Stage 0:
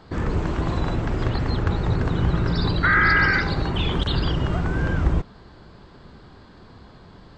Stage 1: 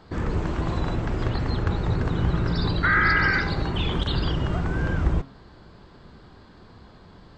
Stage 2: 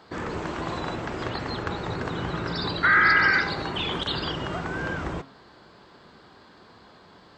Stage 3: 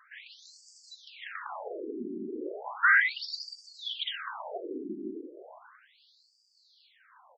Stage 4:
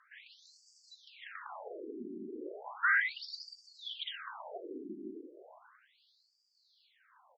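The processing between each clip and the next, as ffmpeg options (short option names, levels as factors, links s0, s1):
-af "bandreject=f=135.2:t=h:w=4,bandreject=f=270.4:t=h:w=4,bandreject=f=405.6:t=h:w=4,bandreject=f=540.8:t=h:w=4,bandreject=f=676:t=h:w=4,bandreject=f=811.2:t=h:w=4,bandreject=f=946.4:t=h:w=4,bandreject=f=1081.6:t=h:w=4,bandreject=f=1216.8:t=h:w=4,bandreject=f=1352:t=h:w=4,bandreject=f=1487.2:t=h:w=4,bandreject=f=1622.4:t=h:w=4,bandreject=f=1757.6:t=h:w=4,bandreject=f=1892.8:t=h:w=4,bandreject=f=2028:t=h:w=4,bandreject=f=2163.2:t=h:w=4,bandreject=f=2298.4:t=h:w=4,bandreject=f=2433.6:t=h:w=4,bandreject=f=2568.8:t=h:w=4,bandreject=f=2704:t=h:w=4,bandreject=f=2839.2:t=h:w=4,bandreject=f=2974.4:t=h:w=4,bandreject=f=3109.6:t=h:w=4,bandreject=f=3244.8:t=h:w=4,bandreject=f=3380:t=h:w=4,bandreject=f=3515.2:t=h:w=4,bandreject=f=3650.4:t=h:w=4,bandreject=f=3785.6:t=h:w=4,bandreject=f=3920.8:t=h:w=4,bandreject=f=4056:t=h:w=4,bandreject=f=4191.2:t=h:w=4,bandreject=f=4326.4:t=h:w=4,bandreject=f=4461.6:t=h:w=4,volume=0.794"
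-af "highpass=f=460:p=1,volume=1.33"
-filter_complex "[0:a]asplit=2[s0][s1];[s1]adelay=342,lowpass=f=1800:p=1,volume=0.355,asplit=2[s2][s3];[s3]adelay=342,lowpass=f=1800:p=1,volume=0.51,asplit=2[s4][s5];[s5]adelay=342,lowpass=f=1800:p=1,volume=0.51,asplit=2[s6][s7];[s7]adelay=342,lowpass=f=1800:p=1,volume=0.51,asplit=2[s8][s9];[s9]adelay=342,lowpass=f=1800:p=1,volume=0.51,asplit=2[s10][s11];[s11]adelay=342,lowpass=f=1800:p=1,volume=0.51[s12];[s0][s2][s4][s6][s8][s10][s12]amix=inputs=7:normalize=0,afftfilt=real='re*between(b*sr/1024,280*pow(6500/280,0.5+0.5*sin(2*PI*0.35*pts/sr))/1.41,280*pow(6500/280,0.5+0.5*sin(2*PI*0.35*pts/sr))*1.41)':imag='im*between(b*sr/1024,280*pow(6500/280,0.5+0.5*sin(2*PI*0.35*pts/sr))/1.41,280*pow(6500/280,0.5+0.5*sin(2*PI*0.35*pts/sr))*1.41)':win_size=1024:overlap=0.75,volume=0.841"
-af "lowpass=7200,volume=0.473"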